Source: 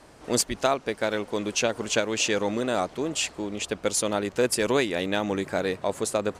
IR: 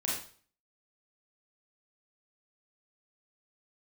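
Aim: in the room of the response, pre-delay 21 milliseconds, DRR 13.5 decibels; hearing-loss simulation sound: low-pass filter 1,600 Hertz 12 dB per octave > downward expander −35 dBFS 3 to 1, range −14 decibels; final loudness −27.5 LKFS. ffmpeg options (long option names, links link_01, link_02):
-filter_complex "[0:a]asplit=2[link_01][link_02];[1:a]atrim=start_sample=2205,adelay=21[link_03];[link_02][link_03]afir=irnorm=-1:irlink=0,volume=-19dB[link_04];[link_01][link_04]amix=inputs=2:normalize=0,lowpass=1600,agate=range=-14dB:threshold=-35dB:ratio=3,volume=0.5dB"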